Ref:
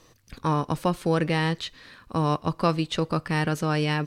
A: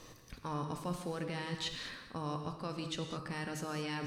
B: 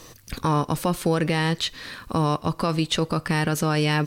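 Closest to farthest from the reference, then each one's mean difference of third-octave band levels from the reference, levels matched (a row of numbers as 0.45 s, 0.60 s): B, A; 4.0 dB, 7.0 dB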